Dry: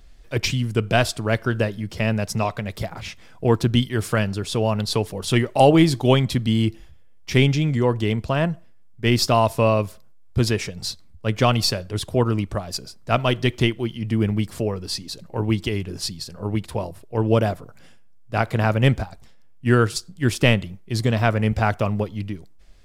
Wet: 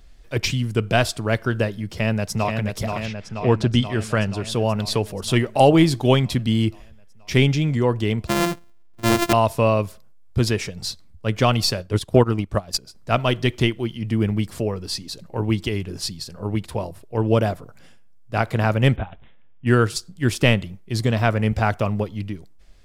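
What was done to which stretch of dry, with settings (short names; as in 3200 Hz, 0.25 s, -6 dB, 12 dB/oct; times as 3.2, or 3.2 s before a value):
1.86–2.55 echo throw 0.48 s, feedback 70%, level -5 dB
3.05–4.48 LPF 4700 Hz -> 11000 Hz
8.27–9.33 sample sorter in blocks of 128 samples
11.78–12.95 transient shaper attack +8 dB, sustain -9 dB
18.96–19.67 careless resampling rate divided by 6×, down none, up filtered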